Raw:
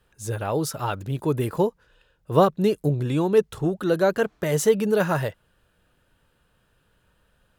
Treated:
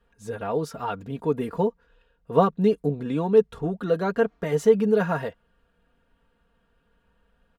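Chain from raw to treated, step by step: low-pass 1.9 kHz 6 dB/octave; comb 4.3 ms, depth 71%; trim -2.5 dB

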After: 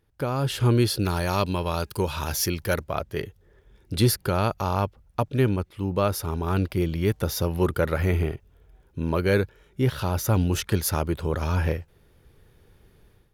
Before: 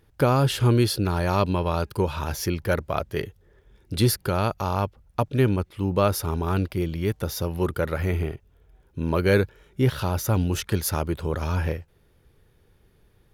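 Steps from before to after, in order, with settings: 0.99–2.84 s: treble shelf 3 kHz +9.5 dB; level rider gain up to 12.5 dB; trim -8.5 dB

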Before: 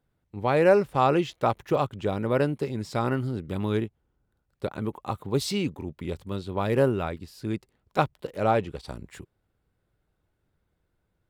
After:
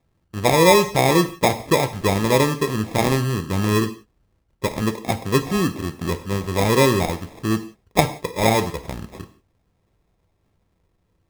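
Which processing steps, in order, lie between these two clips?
low-pass that closes with the level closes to 590 Hz, closed at -18.5 dBFS; sample-and-hold 30×; gated-style reverb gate 200 ms falling, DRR 8.5 dB; trim +7 dB

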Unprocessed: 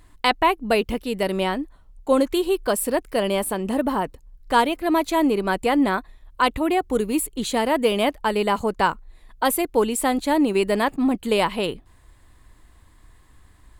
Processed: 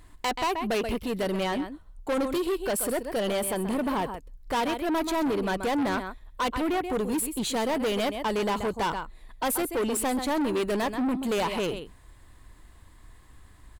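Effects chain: delay 131 ms -13 dB; saturation -23.5 dBFS, distortion -7 dB

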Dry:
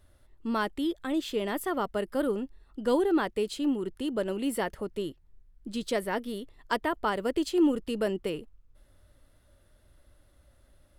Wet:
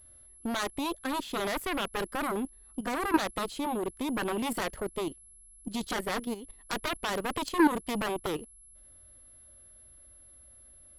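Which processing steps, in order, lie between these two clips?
whistle 11 kHz -51 dBFS; Chebyshev shaper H 3 -11 dB, 5 -44 dB, 7 -14 dB, 8 -28 dB, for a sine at -14.5 dBFS; level held to a coarse grid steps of 12 dB; trim +5 dB

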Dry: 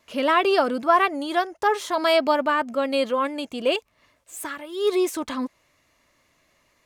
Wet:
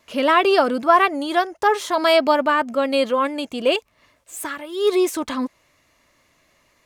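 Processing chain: trim +3.5 dB

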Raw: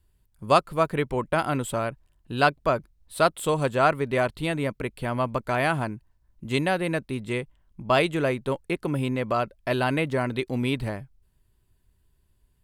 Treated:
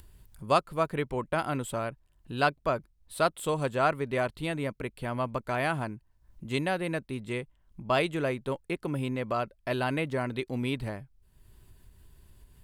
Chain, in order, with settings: upward compressor, threshold -34 dBFS; trim -5 dB

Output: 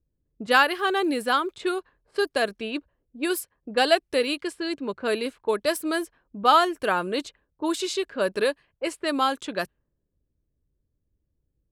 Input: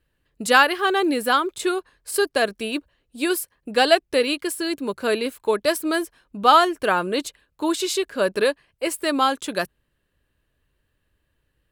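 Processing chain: level-controlled noise filter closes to 360 Hz, open at -19 dBFS; trim -3.5 dB

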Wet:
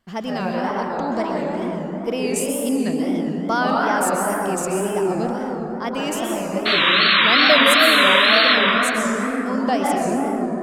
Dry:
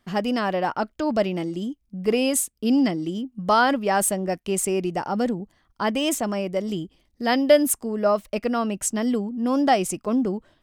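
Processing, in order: 0.66–1.56 s: rippled EQ curve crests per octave 1, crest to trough 8 dB; 6.65–8.56 s: painted sound noise 1–4.2 kHz -15 dBFS; plate-style reverb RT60 4.1 s, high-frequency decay 0.3×, pre-delay 110 ms, DRR -3 dB; wow and flutter 130 cents; trim -3.5 dB

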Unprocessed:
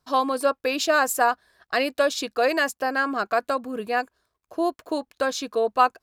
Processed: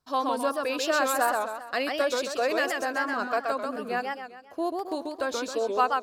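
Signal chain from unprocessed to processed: modulated delay 132 ms, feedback 44%, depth 212 cents, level -3.5 dB; trim -5.5 dB

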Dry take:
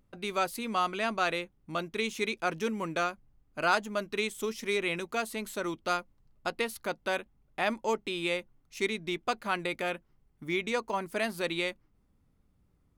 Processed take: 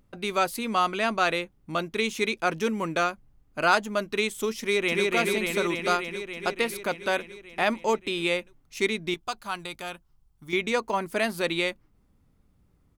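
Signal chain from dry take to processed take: 4.59–5.10 s: echo throw 290 ms, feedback 75%, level -1 dB; 9.14–10.53 s: graphic EQ 125/250/500/2000 Hz -3/-10/-11/-11 dB; trim +5 dB

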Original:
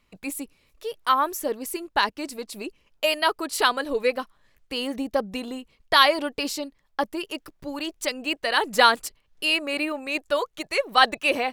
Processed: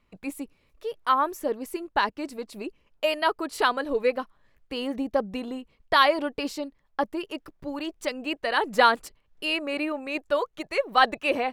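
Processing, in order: treble shelf 3 kHz -11 dB

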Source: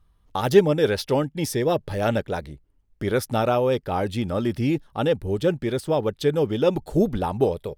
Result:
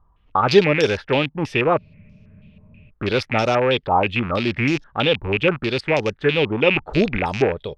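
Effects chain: rattle on loud lows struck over -30 dBFS, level -19 dBFS; spectral freeze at 1.80 s, 1.09 s; step-sequenced low-pass 6.2 Hz 980–5700 Hz; trim +1.5 dB

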